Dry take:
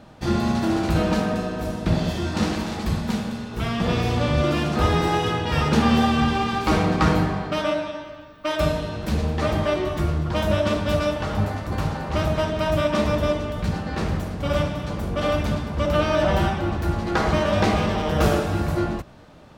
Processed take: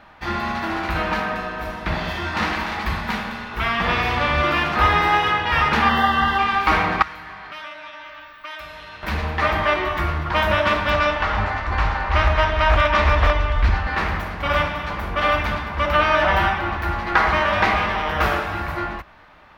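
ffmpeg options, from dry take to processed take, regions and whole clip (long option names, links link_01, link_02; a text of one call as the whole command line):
ffmpeg -i in.wav -filter_complex "[0:a]asettb=1/sr,asplit=3[link_01][link_02][link_03];[link_01]atrim=end=5.894[link_04];[link_02]atrim=start=5.89:end=6.39,asetpts=PTS-STARTPTS,afade=type=in:duration=0.004:curve=qsin,afade=type=out:start_time=0.496:duration=0.004:curve=qsin,acrossover=split=3300[link_05][link_06];[link_06]acompressor=threshold=-46dB:ratio=4:attack=1:release=60[link_07];[link_05][link_07]amix=inputs=2:normalize=0,asuperstop=centerf=2400:order=20:qfactor=4.3,aemphasis=mode=production:type=50fm[link_08];[link_03]atrim=start=6.386[link_09];[link_04][link_08]acrossfade=duration=0.004:curve1=hsin:curve2=qsin[link_10];[link_10][link_09]acrossfade=duration=0.004:curve1=qsin:curve2=hsin,asettb=1/sr,asplit=3[link_11][link_12][link_13];[link_11]atrim=end=7.024[link_14];[link_12]atrim=start=7.02:end=9.03,asetpts=PTS-STARTPTS,afade=type=in:duration=0.004:curve=qsin,afade=type=out:start_time=2.006:duration=0.004:curve=qsin,tiltshelf=frequency=1400:gain=-5.5,acompressor=threshold=-39dB:ratio=4:attack=3.2:release=140:knee=1:detection=peak[link_15];[link_13]atrim=start=9.026[link_16];[link_14][link_15]acrossfade=duration=0.004:curve1=hsin:curve2=qsin[link_17];[link_17][link_16]acrossfade=duration=0.004:curve1=qsin:curve2=hsin,asettb=1/sr,asplit=3[link_18][link_19][link_20];[link_18]atrim=end=10.904[link_21];[link_19]atrim=start=10.9:end=13.87,asetpts=PTS-STARTPTS,afade=type=in:duration=0.004:curve=qsin,afade=type=out:start_time=2.966:duration=0.004:curve=qsin,lowpass=frequency=7600:width=0.5412,lowpass=frequency=7600:width=1.3066,asubboost=boost=10:cutoff=72,aeval=exprs='0.266*(abs(mod(val(0)/0.266+3,4)-2)-1)':channel_layout=same[link_22];[link_20]atrim=start=13.866[link_23];[link_21][link_22]acrossfade=duration=0.004:curve1=hsin:curve2=qsin[link_24];[link_24][link_23]acrossfade=duration=0.004:curve1=qsin:curve2=hsin,equalizer=frequency=125:width_type=o:width=1:gain=-11,equalizer=frequency=250:width_type=o:width=1:gain=-6,equalizer=frequency=500:width_type=o:width=1:gain=-6,equalizer=frequency=1000:width_type=o:width=1:gain=6,equalizer=frequency=2000:width_type=o:width=1:gain=9,equalizer=frequency=8000:width_type=o:width=1:gain=-12,dynaudnorm=framelen=360:gausssize=13:maxgain=5dB" out.wav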